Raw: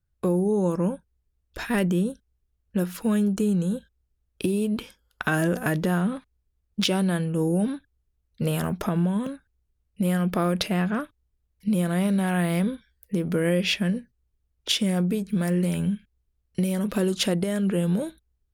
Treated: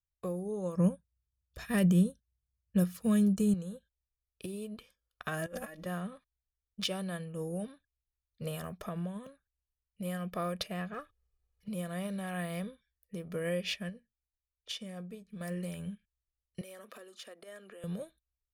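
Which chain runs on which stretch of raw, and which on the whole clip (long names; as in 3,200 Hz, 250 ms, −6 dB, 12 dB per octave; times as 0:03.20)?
0:00.76–0:03.54: high-pass filter 68 Hz + bass and treble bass +13 dB, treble +5 dB
0:05.46–0:05.86: compressor whose output falls as the input rises −28 dBFS, ratio −0.5 + comb filter 3.6 ms, depth 87%
0:10.93–0:11.68: mu-law and A-law mismatch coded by mu + high-shelf EQ 4,200 Hz −7 dB + comb filter 2.4 ms, depth 55%
0:13.89–0:15.41: high-shelf EQ 8,200 Hz −7 dB + tuned comb filter 230 Hz, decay 0.19 s, mix 40%
0:16.61–0:17.84: Butterworth high-pass 240 Hz 48 dB per octave + parametric band 1,500 Hz +5.5 dB 0.99 octaves + downward compressor 16 to 1, threshold −29 dBFS
whole clip: low-shelf EQ 430 Hz −3 dB; comb filter 1.7 ms, depth 51%; expander for the loud parts 1.5 to 1, over −39 dBFS; level −6.5 dB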